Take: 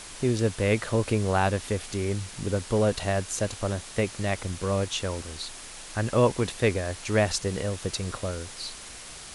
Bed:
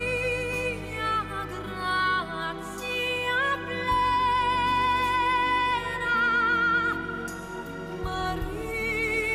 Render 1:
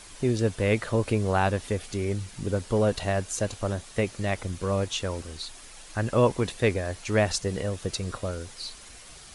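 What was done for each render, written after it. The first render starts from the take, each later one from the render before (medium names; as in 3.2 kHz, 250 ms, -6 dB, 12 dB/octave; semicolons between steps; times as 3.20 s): noise reduction 7 dB, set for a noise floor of -43 dBFS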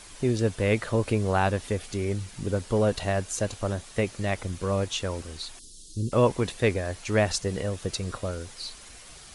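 5.59–6.12 s: inverse Chebyshev band-stop 650–2300 Hz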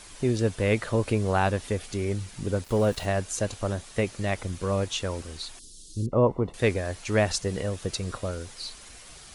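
2.64–3.06 s: small samples zeroed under -41 dBFS; 6.06–6.54 s: Savitzky-Golay filter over 65 samples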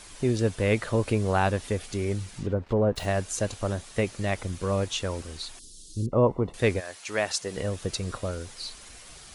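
2.30–2.96 s: low-pass that closes with the level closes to 1.1 kHz, closed at -23 dBFS; 6.79–7.56 s: high-pass 1.4 kHz -> 380 Hz 6 dB/octave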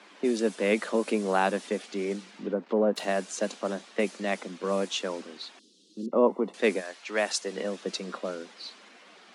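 steep high-pass 190 Hz 72 dB/octave; level-controlled noise filter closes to 2.5 kHz, open at -21.5 dBFS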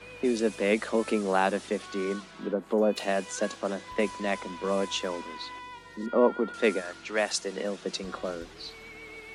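add bed -18.5 dB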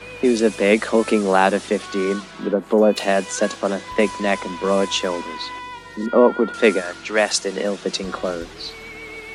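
trim +9.5 dB; peak limiter -2 dBFS, peak gain reduction 2 dB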